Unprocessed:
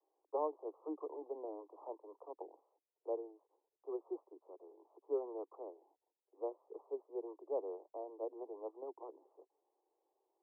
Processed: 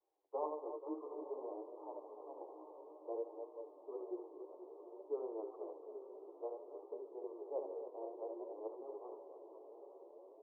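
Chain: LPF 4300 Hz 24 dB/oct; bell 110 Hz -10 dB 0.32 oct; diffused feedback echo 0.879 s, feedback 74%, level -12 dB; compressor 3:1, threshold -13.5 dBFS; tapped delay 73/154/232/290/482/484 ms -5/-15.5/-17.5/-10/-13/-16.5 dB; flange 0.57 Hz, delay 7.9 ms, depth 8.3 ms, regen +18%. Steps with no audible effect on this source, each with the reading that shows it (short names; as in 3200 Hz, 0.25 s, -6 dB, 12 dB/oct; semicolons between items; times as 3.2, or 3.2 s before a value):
LPF 4300 Hz: input band ends at 1100 Hz; bell 110 Hz: input band starts at 250 Hz; compressor, threshold -13.5 dBFS: input peak -25.0 dBFS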